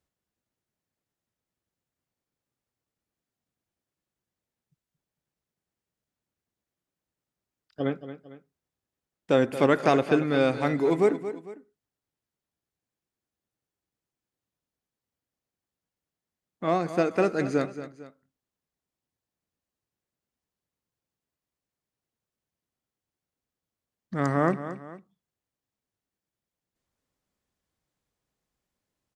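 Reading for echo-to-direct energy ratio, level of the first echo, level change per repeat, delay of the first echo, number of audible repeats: -12.0 dB, -12.5 dB, -7.5 dB, 226 ms, 2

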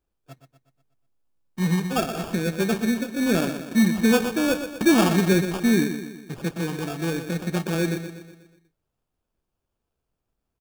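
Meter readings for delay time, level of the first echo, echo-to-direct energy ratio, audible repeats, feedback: 122 ms, -9.5 dB, -8.0 dB, 5, 51%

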